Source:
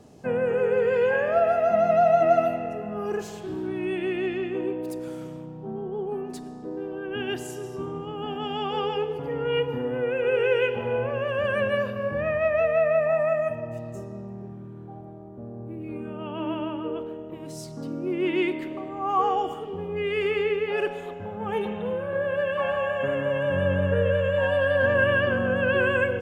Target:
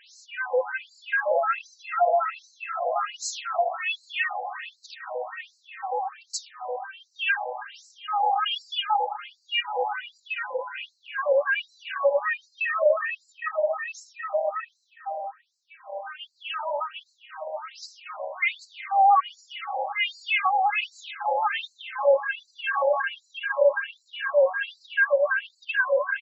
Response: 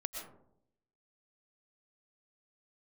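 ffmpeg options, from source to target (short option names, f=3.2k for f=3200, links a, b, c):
-filter_complex "[0:a]asplit=2[a][b];[b]acompressor=threshold=-31dB:ratio=6,volume=0dB[c];[a][c]amix=inputs=2:normalize=0,aecho=1:1:3.8:0.89,asplit=2[d][e];[e]adelay=1283,volume=-6dB,highshelf=f=4k:g=-28.9[f];[d][f]amix=inputs=2:normalize=0,acontrast=22,lowshelf=f=300:g=-9,alimiter=limit=-13.5dB:level=0:latency=1:release=425,afftfilt=real='re*between(b*sr/1024,700*pow(5700/700,0.5+0.5*sin(2*PI*1.3*pts/sr))/1.41,700*pow(5700/700,0.5+0.5*sin(2*PI*1.3*pts/sr))*1.41)':imag='im*between(b*sr/1024,700*pow(5700/700,0.5+0.5*sin(2*PI*1.3*pts/sr))/1.41,700*pow(5700/700,0.5+0.5*sin(2*PI*1.3*pts/sr))*1.41)':win_size=1024:overlap=0.75,volume=4dB"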